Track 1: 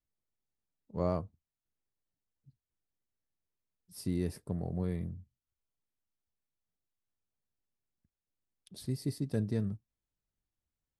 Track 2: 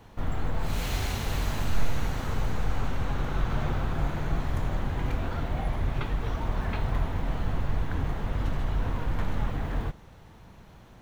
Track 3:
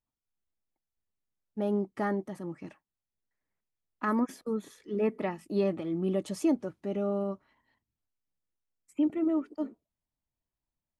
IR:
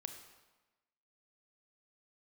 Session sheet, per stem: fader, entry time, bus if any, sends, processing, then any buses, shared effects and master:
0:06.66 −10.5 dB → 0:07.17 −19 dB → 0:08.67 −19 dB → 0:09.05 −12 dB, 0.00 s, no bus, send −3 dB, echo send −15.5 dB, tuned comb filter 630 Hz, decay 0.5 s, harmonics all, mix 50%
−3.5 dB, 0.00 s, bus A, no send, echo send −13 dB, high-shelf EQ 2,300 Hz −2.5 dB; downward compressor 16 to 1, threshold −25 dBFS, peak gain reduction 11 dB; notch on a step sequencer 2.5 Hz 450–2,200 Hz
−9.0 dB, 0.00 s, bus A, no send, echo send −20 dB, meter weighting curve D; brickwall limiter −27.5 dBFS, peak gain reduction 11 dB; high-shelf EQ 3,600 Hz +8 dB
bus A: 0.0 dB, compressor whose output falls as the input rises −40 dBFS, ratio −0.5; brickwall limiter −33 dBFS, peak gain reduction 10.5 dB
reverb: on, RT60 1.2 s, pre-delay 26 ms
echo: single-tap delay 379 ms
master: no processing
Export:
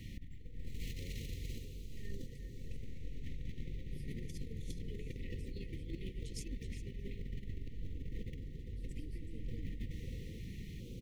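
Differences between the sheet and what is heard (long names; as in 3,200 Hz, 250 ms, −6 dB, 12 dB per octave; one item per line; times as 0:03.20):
stem 1 −10.5 dB → −18.0 dB
master: extra linear-phase brick-wall band-stop 540–1,800 Hz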